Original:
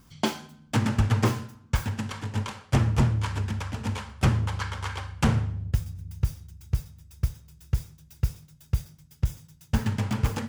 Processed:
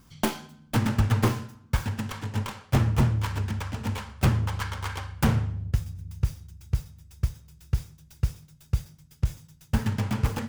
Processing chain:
stylus tracing distortion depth 0.3 ms

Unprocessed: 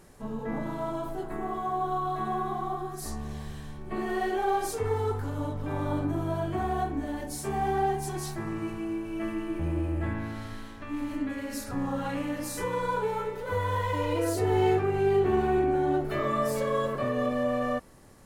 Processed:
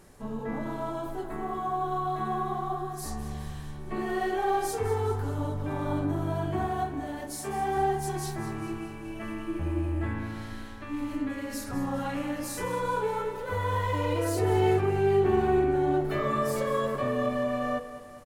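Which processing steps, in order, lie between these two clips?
hum removal 164.9 Hz, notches 4
0:06.66–0:07.77: low-shelf EQ 210 Hz −8.5 dB
repeating echo 204 ms, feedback 56%, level −13.5 dB

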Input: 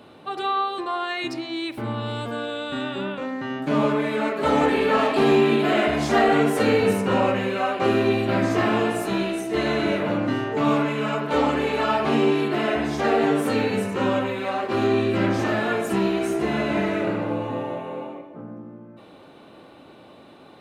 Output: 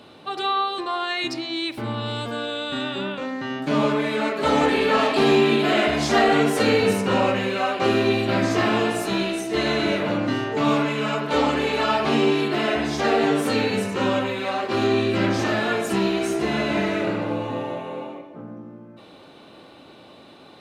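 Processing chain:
parametric band 4,800 Hz +7 dB 1.6 octaves

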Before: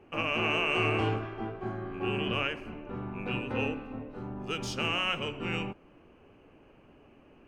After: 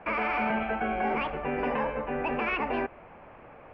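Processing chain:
elliptic low-pass filter 1,300 Hz, stop band 60 dB
brickwall limiter −29 dBFS, peak gain reduction 10.5 dB
wrong playback speed 7.5 ips tape played at 15 ips
level +8.5 dB

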